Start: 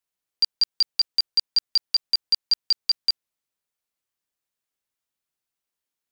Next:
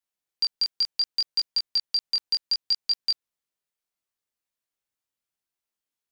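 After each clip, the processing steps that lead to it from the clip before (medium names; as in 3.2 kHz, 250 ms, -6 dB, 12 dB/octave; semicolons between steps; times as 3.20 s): chorus 0.68 Hz, delay 19 ms, depth 5.3 ms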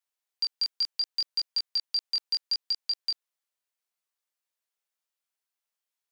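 high-pass 530 Hz 12 dB/octave; peak limiter -21 dBFS, peak gain reduction 8 dB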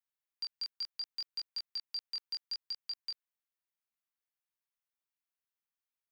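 graphic EQ 500/4000/8000 Hz -9/-4/-7 dB; trim -5 dB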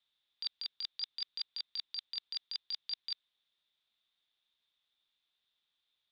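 resonant low-pass 3.6 kHz, resonance Q 13; compressor with a negative ratio -38 dBFS, ratio -0.5; trim +1.5 dB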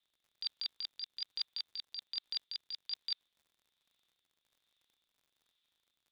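rotary cabinet horn 1.2 Hz; crackle 64 per s -61 dBFS; trim +2 dB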